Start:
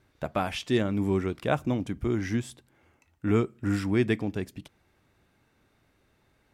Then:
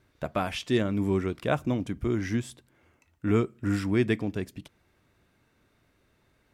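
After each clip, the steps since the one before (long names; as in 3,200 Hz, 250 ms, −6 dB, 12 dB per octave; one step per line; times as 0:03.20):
notch filter 810 Hz, Q 12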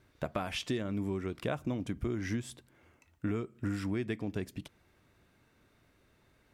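downward compressor 12 to 1, threshold −30 dBFS, peak gain reduction 12.5 dB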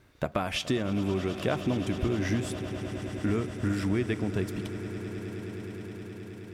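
echo that builds up and dies away 105 ms, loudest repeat 8, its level −17 dB
level +5.5 dB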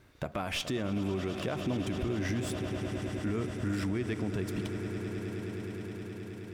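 stylus tracing distortion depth 0.035 ms
brickwall limiter −23.5 dBFS, peak gain reduction 8 dB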